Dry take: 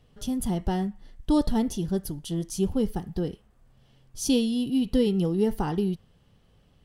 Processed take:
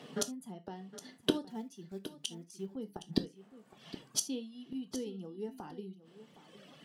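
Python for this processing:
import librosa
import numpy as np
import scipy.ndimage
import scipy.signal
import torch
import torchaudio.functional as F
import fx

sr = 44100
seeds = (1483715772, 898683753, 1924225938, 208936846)

y = fx.block_float(x, sr, bits=5, at=(1.5, 2.68))
y = fx.dereverb_blind(y, sr, rt60_s=1.3)
y = scipy.signal.sosfilt(scipy.signal.butter(6, 170.0, 'highpass', fs=sr, output='sos'), y)
y = fx.gate_flip(y, sr, shuts_db=-29.0, range_db=-32)
y = fx.high_shelf(y, sr, hz=11000.0, db=-12.0)
y = y + 10.0 ** (-15.0 / 20.0) * np.pad(y, (int(765 * sr / 1000.0), 0))[:len(y)]
y = fx.rev_gated(y, sr, seeds[0], gate_ms=100, shape='falling', drr_db=9.0)
y = y * librosa.db_to_amplitude(15.5)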